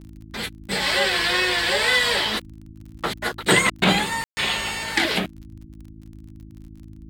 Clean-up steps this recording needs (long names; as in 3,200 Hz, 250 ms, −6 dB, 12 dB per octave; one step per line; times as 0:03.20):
click removal
hum removal 53.5 Hz, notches 6
ambience match 0:04.24–0:04.37
noise reduction from a noise print 26 dB